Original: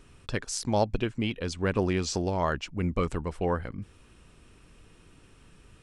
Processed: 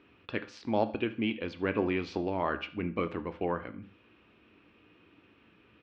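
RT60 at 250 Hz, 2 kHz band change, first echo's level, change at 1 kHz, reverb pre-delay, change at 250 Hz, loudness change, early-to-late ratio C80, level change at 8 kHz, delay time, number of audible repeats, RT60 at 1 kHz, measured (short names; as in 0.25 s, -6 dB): 0.50 s, -1.0 dB, -20.5 dB, -3.0 dB, 10 ms, -2.0 dB, -3.5 dB, 19.5 dB, under -25 dB, 77 ms, 1, 0.45 s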